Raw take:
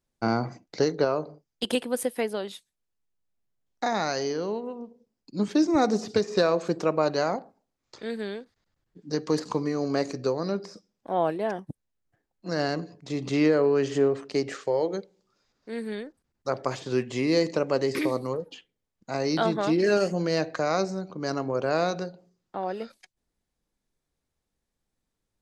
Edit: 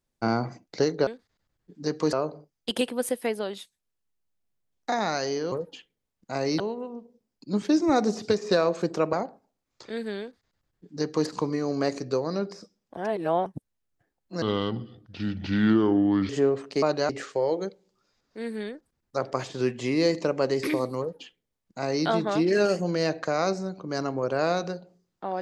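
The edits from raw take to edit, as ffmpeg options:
-filter_complex "[0:a]asplit=12[s0][s1][s2][s3][s4][s5][s6][s7][s8][s9][s10][s11];[s0]atrim=end=1.072[s12];[s1]atrim=start=8.338:end=9.402[s13];[s2]atrim=start=1.068:end=4.462[s14];[s3]atrim=start=18.308:end=19.392[s15];[s4]atrim=start=4.458:end=6.992[s16];[s5]atrim=start=7.258:end=11.102[s17];[s6]atrim=start=11.098:end=11.592,asetpts=PTS-STARTPTS,areverse[s18];[s7]atrim=start=11.588:end=12.554[s19];[s8]atrim=start=12.55:end=13.88,asetpts=PTS-STARTPTS,asetrate=31311,aresample=44100[s20];[s9]atrim=start=13.876:end=14.412[s21];[s10]atrim=start=6.988:end=7.262[s22];[s11]atrim=start=14.408[s23];[s12][s13]acrossfade=d=0.004:c1=hsin:c2=hsin[s24];[s24][s14]acrossfade=d=0.004:c1=hsin:c2=hsin[s25];[s25][s15]acrossfade=d=0.004:c1=hsin:c2=hsin[s26];[s26][s16]acrossfade=d=0.004:c1=hsin:c2=hsin[s27];[s27][s17]acrossfade=d=0.004:c1=hsin:c2=hsin[s28];[s28][s18]acrossfade=d=0.004:c1=hsin:c2=hsin[s29];[s29][s19]acrossfade=d=0.004:c1=hsin:c2=hsin[s30];[s30][s20]acrossfade=d=0.004:c1=hsin:c2=hsin[s31];[s31][s21]acrossfade=d=0.004:c1=hsin:c2=hsin[s32];[s32][s22]acrossfade=d=0.004:c1=hsin:c2=hsin[s33];[s33][s23]acrossfade=d=0.004:c1=hsin:c2=hsin"

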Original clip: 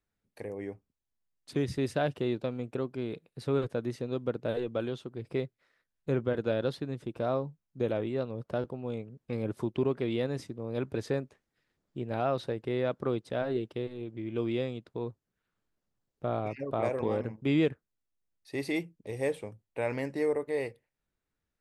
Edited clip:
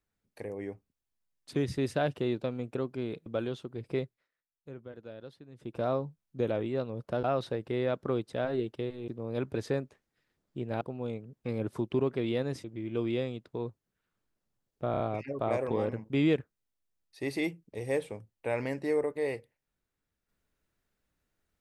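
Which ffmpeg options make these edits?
-filter_complex "[0:a]asplit=11[s0][s1][s2][s3][s4][s5][s6][s7][s8][s9][s10];[s0]atrim=end=3.262[s11];[s1]atrim=start=4.668:end=5.7,asetpts=PTS-STARTPTS,afade=t=out:st=0.782:d=0.25:silence=0.158489[s12];[s2]atrim=start=5.7:end=6.93,asetpts=PTS-STARTPTS,volume=0.158[s13];[s3]atrim=start=6.93:end=8.652,asetpts=PTS-STARTPTS,afade=t=in:d=0.25:silence=0.158489[s14];[s4]atrim=start=12.208:end=14.052[s15];[s5]atrim=start=10.478:end=12.212[s16];[s6]atrim=start=8.648:end=10.482[s17];[s7]atrim=start=14.048:end=16.352[s18];[s8]atrim=start=16.318:end=16.352[s19];[s9]atrim=start=16.318:end=16.352[s20];[s10]atrim=start=16.318[s21];[s12][s13][s14]concat=n=3:v=0:a=1[s22];[s11][s22]acrossfade=d=0.004:c1=hsin:c2=hsin[s23];[s23][s15]acrossfade=d=0.004:c1=hsin:c2=hsin[s24];[s24][s16]acrossfade=d=0.004:c1=hsin:c2=hsin[s25];[s25][s17]acrossfade=d=0.004:c1=hsin:c2=hsin[s26];[s26][s18]acrossfade=d=0.004:c1=hsin:c2=hsin[s27];[s27][s19]acrossfade=d=0.004:c1=hsin:c2=hsin[s28];[s28][s20]acrossfade=d=0.004:c1=hsin:c2=hsin[s29];[s29][s21]acrossfade=d=0.004:c1=hsin:c2=hsin"

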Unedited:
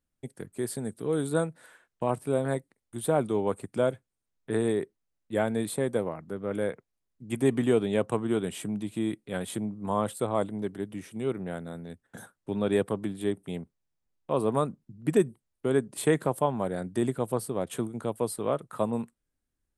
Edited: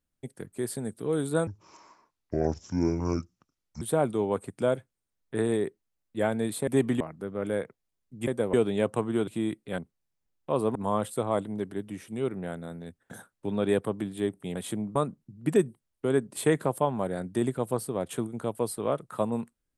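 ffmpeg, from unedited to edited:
-filter_complex "[0:a]asplit=12[s0][s1][s2][s3][s4][s5][s6][s7][s8][s9][s10][s11];[s0]atrim=end=1.474[s12];[s1]atrim=start=1.47:end=2.97,asetpts=PTS-STARTPTS,asetrate=28224,aresample=44100,atrim=end_sample=103359,asetpts=PTS-STARTPTS[s13];[s2]atrim=start=2.966:end=5.832[s14];[s3]atrim=start=7.358:end=7.692[s15];[s4]atrim=start=6.088:end=7.362[s16];[s5]atrim=start=5.828:end=6.092[s17];[s6]atrim=start=7.688:end=8.432[s18];[s7]atrim=start=8.878:end=9.392[s19];[s8]atrim=start=13.588:end=14.562[s20];[s9]atrim=start=9.788:end=13.592[s21];[s10]atrim=start=9.388:end=9.792[s22];[s11]atrim=start=14.558[s23];[s12][s13]acrossfade=d=0.004:c1=hsin:c2=hsin[s24];[s24][s14]acrossfade=d=0.004:c1=hsin:c2=hsin[s25];[s25][s15]acrossfade=d=0.004:c1=hsin:c2=hsin[s26];[s26][s16]acrossfade=d=0.004:c1=hsin:c2=hsin[s27];[s27][s17]acrossfade=d=0.004:c1=hsin:c2=hsin[s28];[s28][s18]acrossfade=d=0.004:c1=hsin:c2=hsin[s29];[s29][s19]acrossfade=d=0.004:c1=hsin:c2=hsin[s30];[s30][s20]acrossfade=d=0.004:c1=hsin:c2=hsin[s31];[s31][s21]acrossfade=d=0.004:c1=hsin:c2=hsin[s32];[s32][s22]acrossfade=d=0.004:c1=hsin:c2=hsin[s33];[s33][s23]acrossfade=d=0.004:c1=hsin:c2=hsin"

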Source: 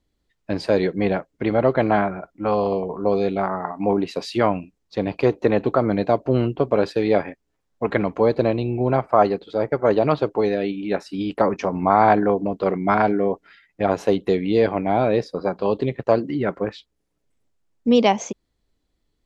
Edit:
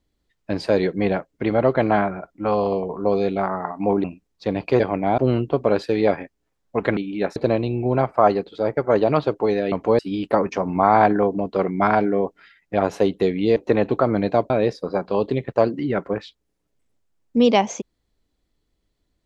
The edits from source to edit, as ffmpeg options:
-filter_complex "[0:a]asplit=10[s0][s1][s2][s3][s4][s5][s6][s7][s8][s9];[s0]atrim=end=4.042[s10];[s1]atrim=start=4.548:end=5.312[s11];[s2]atrim=start=14.628:end=15.012[s12];[s3]atrim=start=6.248:end=8.042[s13];[s4]atrim=start=10.668:end=11.062[s14];[s5]atrim=start=8.308:end=10.672[s15];[s6]atrim=start=8.038:end=8.312[s16];[s7]atrim=start=11.058:end=14.632[s17];[s8]atrim=start=5.308:end=6.252[s18];[s9]atrim=start=15.008[s19];[s10][s11]acrossfade=d=0.004:c1=hsin:c2=hsin[s20];[s20][s12]acrossfade=d=0.004:c1=hsin:c2=hsin[s21];[s21][s13]acrossfade=d=0.004:c1=hsin:c2=hsin[s22];[s22][s14]acrossfade=d=0.004:c1=hsin:c2=hsin[s23];[s23][s15]acrossfade=d=0.004:c1=hsin:c2=hsin[s24];[s24][s16]acrossfade=d=0.004:c1=hsin:c2=hsin[s25];[s25][s17]acrossfade=d=0.004:c1=hsin:c2=hsin[s26];[s26][s18]acrossfade=d=0.004:c1=hsin:c2=hsin[s27];[s27][s19]acrossfade=d=0.004:c1=hsin:c2=hsin"

